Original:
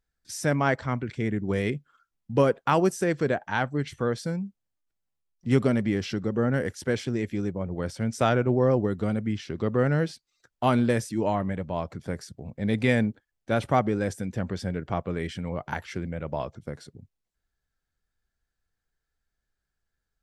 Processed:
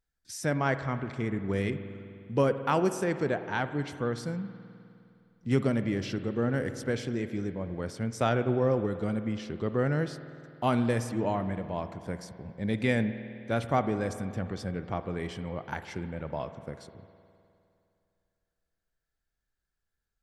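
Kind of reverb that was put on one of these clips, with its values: spring tank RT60 2.6 s, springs 51 ms, chirp 40 ms, DRR 10.5 dB; trim -4 dB

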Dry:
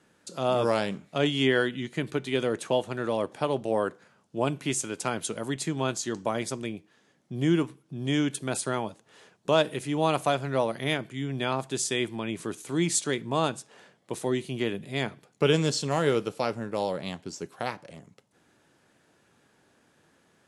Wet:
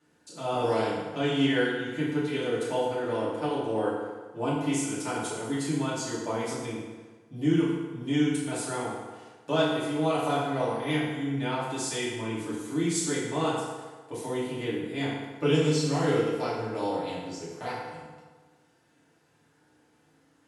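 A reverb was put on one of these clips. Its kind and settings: FDN reverb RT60 1.4 s, low-frequency decay 0.85×, high-frequency decay 0.7×, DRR -9.5 dB; trim -11.5 dB

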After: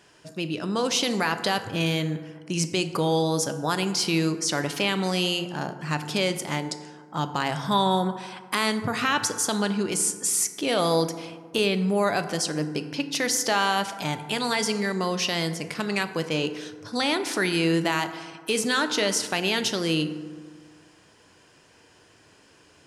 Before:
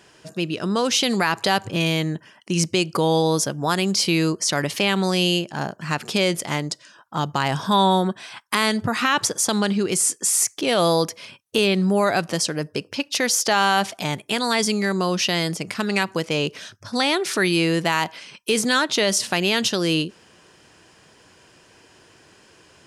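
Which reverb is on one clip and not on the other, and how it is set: FDN reverb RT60 1.7 s, low-frequency decay 1.05×, high-frequency decay 0.4×, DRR 8.5 dB; trim -4.5 dB

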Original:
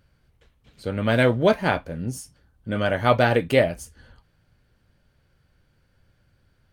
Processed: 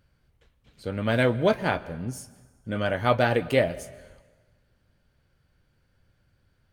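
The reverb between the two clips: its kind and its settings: plate-style reverb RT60 1.4 s, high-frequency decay 0.85×, pre-delay 110 ms, DRR 19 dB; trim -3.5 dB

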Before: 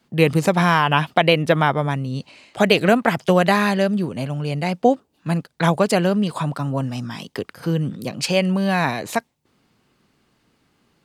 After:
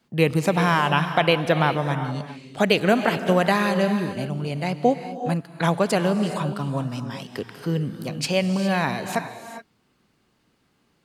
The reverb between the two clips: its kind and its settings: gated-style reverb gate 440 ms rising, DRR 9 dB; trim -3.5 dB

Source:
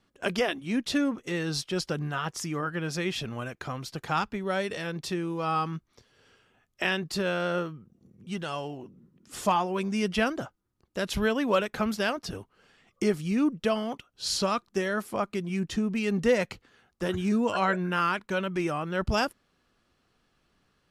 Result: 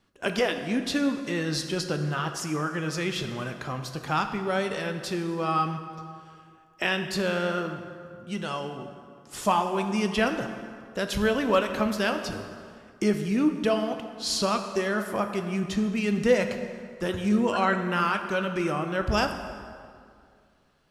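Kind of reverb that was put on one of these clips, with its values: plate-style reverb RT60 2.2 s, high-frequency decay 0.65×, DRR 6 dB; trim +1 dB

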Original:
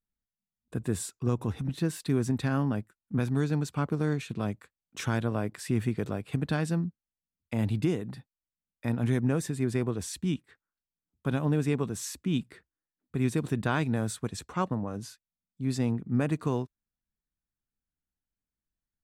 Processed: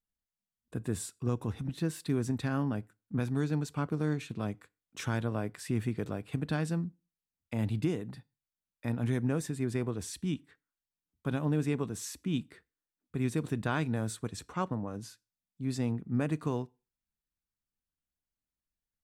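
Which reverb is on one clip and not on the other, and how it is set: FDN reverb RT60 0.33 s, low-frequency decay 1×, high-frequency decay 0.95×, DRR 19.5 dB; trim -3.5 dB

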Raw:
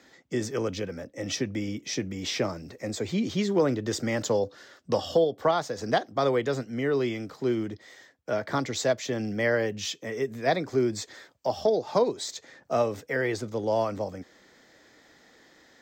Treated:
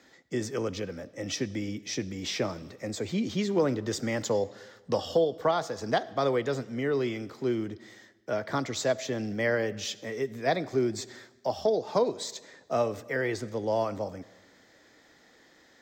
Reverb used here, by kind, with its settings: algorithmic reverb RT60 1.3 s, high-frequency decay 0.9×, pre-delay 30 ms, DRR 18.5 dB; trim -2 dB

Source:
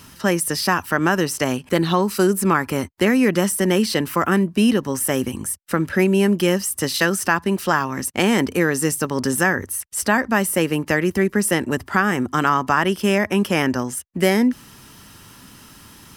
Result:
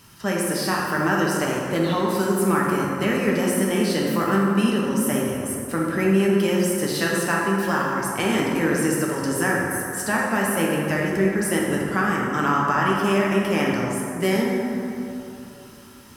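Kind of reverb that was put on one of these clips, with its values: plate-style reverb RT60 2.9 s, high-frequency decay 0.45×, DRR -3.5 dB; trim -7.5 dB

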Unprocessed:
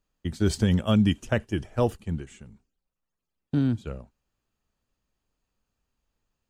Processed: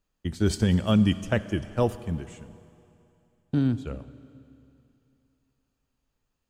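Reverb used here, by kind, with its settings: Schroeder reverb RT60 2.8 s, combs from 30 ms, DRR 14.5 dB

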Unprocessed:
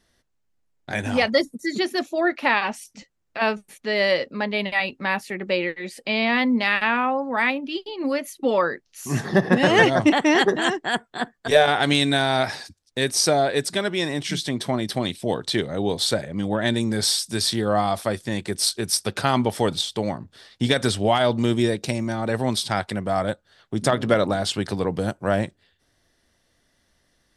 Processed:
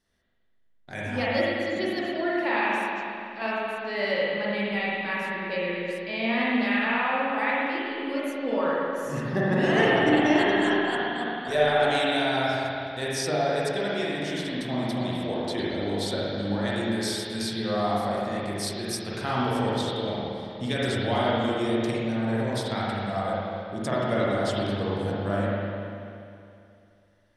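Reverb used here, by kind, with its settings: spring tank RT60 2.6 s, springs 40/53 ms, chirp 75 ms, DRR -7 dB; trim -11.5 dB

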